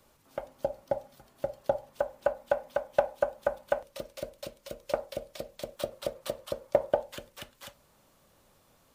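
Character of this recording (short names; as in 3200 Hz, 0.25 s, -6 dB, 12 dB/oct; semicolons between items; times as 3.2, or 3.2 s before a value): noise floor -65 dBFS; spectral tilt -4.0 dB/oct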